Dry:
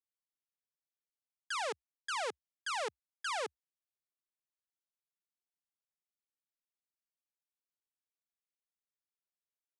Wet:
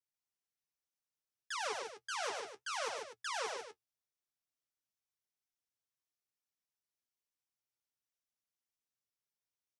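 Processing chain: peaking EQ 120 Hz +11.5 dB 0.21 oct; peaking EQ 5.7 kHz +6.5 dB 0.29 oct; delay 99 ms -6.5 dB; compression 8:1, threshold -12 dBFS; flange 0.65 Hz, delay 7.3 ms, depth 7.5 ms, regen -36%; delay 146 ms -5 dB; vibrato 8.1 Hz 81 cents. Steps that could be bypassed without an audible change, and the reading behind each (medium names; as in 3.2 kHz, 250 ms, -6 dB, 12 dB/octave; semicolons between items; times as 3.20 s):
compression, threshold -12 dBFS: peak at its input -21.5 dBFS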